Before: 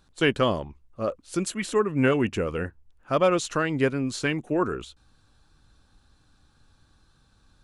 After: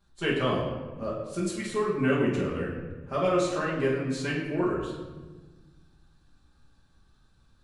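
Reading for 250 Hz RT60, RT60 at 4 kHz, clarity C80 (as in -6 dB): 2.1 s, 0.85 s, 5.0 dB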